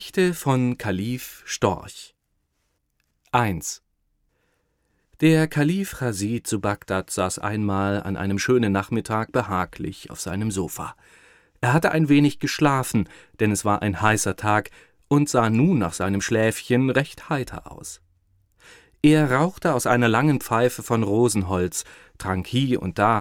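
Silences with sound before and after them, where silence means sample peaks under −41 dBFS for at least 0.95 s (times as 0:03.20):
0:02.07–0:03.34
0:03.77–0:05.20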